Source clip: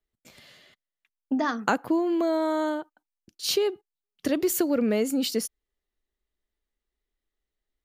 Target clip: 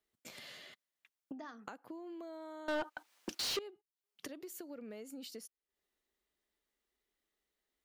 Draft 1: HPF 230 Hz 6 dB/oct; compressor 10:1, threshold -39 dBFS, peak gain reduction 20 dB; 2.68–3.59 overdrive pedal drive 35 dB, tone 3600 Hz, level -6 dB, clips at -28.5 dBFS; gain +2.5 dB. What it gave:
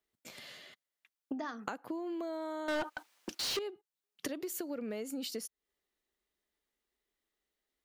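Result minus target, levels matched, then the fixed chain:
compressor: peak gain reduction -8.5 dB
HPF 230 Hz 6 dB/oct; compressor 10:1, threshold -48.5 dBFS, peak gain reduction 28.5 dB; 2.68–3.59 overdrive pedal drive 35 dB, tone 3600 Hz, level -6 dB, clips at -28.5 dBFS; gain +2.5 dB

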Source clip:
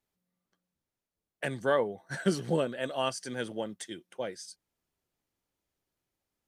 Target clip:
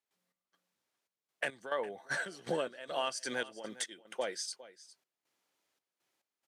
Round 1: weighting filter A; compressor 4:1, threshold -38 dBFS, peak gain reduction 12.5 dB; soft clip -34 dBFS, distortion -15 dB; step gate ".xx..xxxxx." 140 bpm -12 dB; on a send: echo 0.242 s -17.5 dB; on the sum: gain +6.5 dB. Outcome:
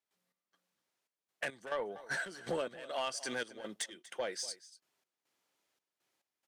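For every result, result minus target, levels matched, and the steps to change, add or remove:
soft clip: distortion +16 dB; echo 0.165 s early
change: soft clip -23.5 dBFS, distortion -30 dB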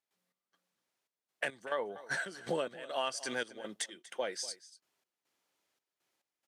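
echo 0.165 s early
change: echo 0.407 s -17.5 dB

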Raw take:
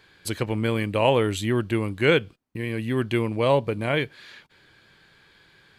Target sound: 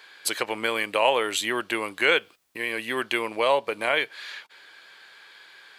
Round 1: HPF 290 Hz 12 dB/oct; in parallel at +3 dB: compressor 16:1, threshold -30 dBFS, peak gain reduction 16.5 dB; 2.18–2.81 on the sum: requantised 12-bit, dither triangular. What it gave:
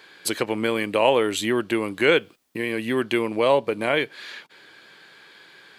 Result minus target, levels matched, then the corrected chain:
250 Hz band +7.0 dB
HPF 670 Hz 12 dB/oct; in parallel at +3 dB: compressor 16:1, threshold -30 dBFS, peak gain reduction 13.5 dB; 2.18–2.81 on the sum: requantised 12-bit, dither triangular

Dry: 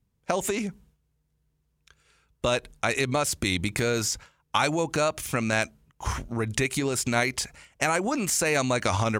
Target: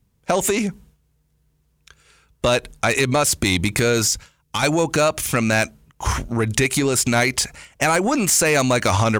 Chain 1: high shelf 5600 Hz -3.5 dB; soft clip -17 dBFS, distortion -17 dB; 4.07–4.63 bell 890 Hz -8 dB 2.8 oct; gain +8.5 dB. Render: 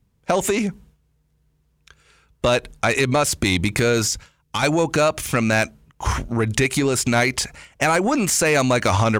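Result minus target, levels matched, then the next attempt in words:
8000 Hz band -2.5 dB
high shelf 5600 Hz +2.5 dB; soft clip -17 dBFS, distortion -16 dB; 4.07–4.63 bell 890 Hz -8 dB 2.8 oct; gain +8.5 dB

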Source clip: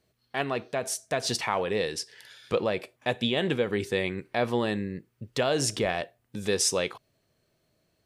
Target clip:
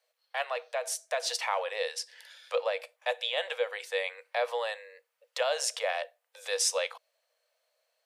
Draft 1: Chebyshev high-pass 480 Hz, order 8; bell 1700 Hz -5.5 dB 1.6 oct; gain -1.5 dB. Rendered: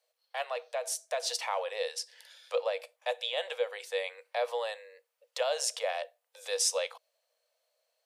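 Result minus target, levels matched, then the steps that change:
2000 Hz band -3.0 dB
remove: bell 1700 Hz -5.5 dB 1.6 oct

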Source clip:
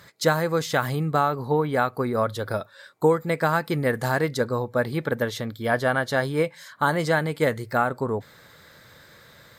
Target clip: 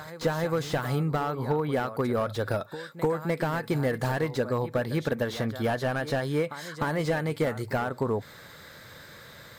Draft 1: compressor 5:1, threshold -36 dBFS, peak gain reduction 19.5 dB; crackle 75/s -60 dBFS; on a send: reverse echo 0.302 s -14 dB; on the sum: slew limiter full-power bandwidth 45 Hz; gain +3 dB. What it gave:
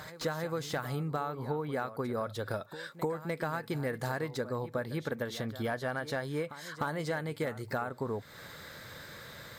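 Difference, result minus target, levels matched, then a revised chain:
compressor: peak gain reduction +7.5 dB
compressor 5:1, threshold -26.5 dBFS, peak gain reduction 11.5 dB; crackle 75/s -60 dBFS; on a send: reverse echo 0.302 s -14 dB; on the sum: slew limiter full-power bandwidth 45 Hz; gain +3 dB

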